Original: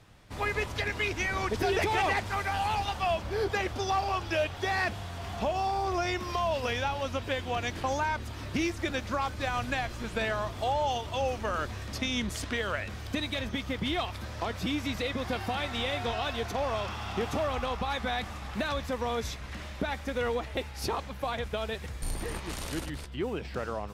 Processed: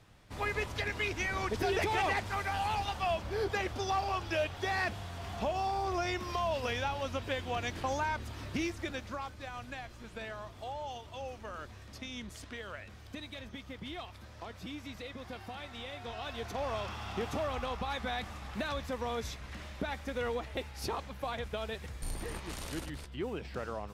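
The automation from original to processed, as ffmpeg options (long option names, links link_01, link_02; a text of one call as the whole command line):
ffmpeg -i in.wav -af "volume=4dB,afade=type=out:start_time=8.4:duration=1.01:silence=0.375837,afade=type=in:start_time=16:duration=0.7:silence=0.421697" out.wav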